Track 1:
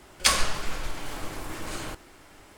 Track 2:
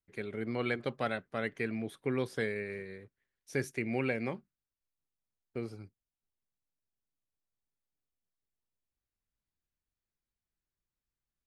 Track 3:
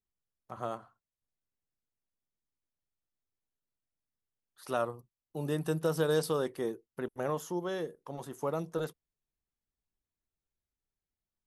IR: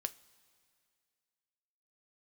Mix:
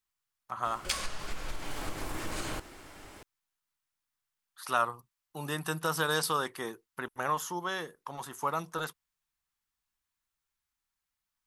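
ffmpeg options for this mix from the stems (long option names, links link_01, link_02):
-filter_complex "[0:a]acompressor=threshold=-32dB:ratio=8,adelay=650,volume=1.5dB[link_01];[2:a]lowshelf=frequency=740:width_type=q:width=1.5:gain=-10.5,acontrast=88,volume=0dB[link_02];[link_01][link_02]amix=inputs=2:normalize=0"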